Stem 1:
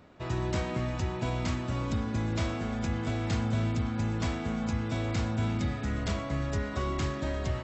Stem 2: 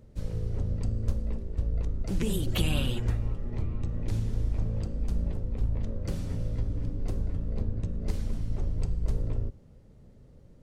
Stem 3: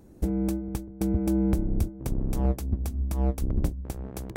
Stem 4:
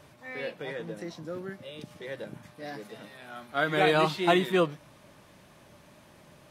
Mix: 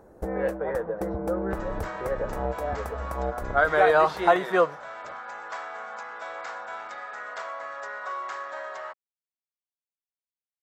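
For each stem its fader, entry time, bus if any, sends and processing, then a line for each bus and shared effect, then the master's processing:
−7.0 dB, 1.30 s, no send, high-pass filter 950 Hz 12 dB per octave
muted
−5.5 dB, 0.00 s, no send, no processing
−0.5 dB, 0.00 s, no send, noise gate with hold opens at −43 dBFS; low-pass that shuts in the quiet parts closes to 420 Hz, open at −23.5 dBFS; parametric band 5,700 Hz +6.5 dB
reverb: not used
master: flat-topped bell 880 Hz +15.5 dB 2.4 octaves; downward compressor 1.5 to 1, threshold −32 dBFS, peak gain reduction 10 dB

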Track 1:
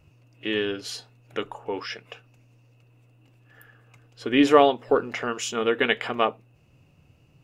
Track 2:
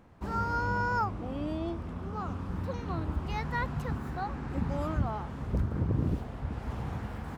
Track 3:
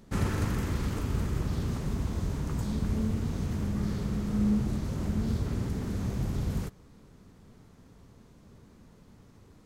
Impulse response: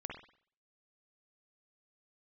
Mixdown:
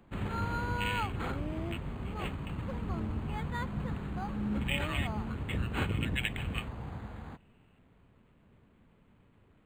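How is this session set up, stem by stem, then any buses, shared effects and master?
−10.5 dB, 0.35 s, no send, high-pass with resonance 2,500 Hz, resonance Q 1.8
−5.5 dB, 0.00 s, no send, no processing
−8.5 dB, 0.00 s, no send, parametric band 3,000 Hz +8 dB 0.29 octaves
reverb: not used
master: high-shelf EQ 3,500 Hz +10 dB; linearly interpolated sample-rate reduction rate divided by 8×

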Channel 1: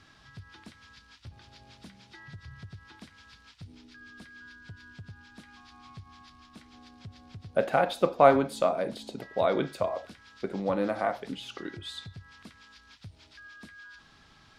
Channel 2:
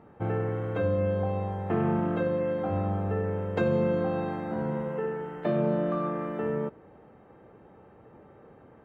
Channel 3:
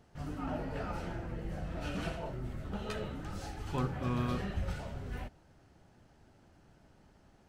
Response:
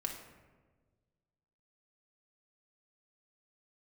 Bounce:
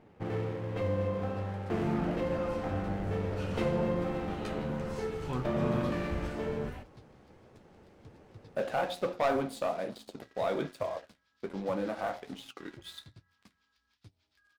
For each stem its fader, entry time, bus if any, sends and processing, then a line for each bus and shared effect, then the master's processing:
−11.5 dB, 1.00 s, no send, hum removal 89.17 Hz, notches 8; leveller curve on the samples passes 3
−0.5 dB, 0.00 s, no send, lower of the sound and its delayed copy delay 0.31 ms
+2.0 dB, 1.55 s, no send, no processing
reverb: not used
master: flanger 1.2 Hz, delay 7.7 ms, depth 9.2 ms, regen −50%

